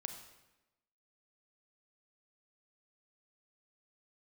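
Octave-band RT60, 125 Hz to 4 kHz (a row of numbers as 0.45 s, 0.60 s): 1.0 s, 1.1 s, 1.0 s, 1.0 s, 0.95 s, 0.85 s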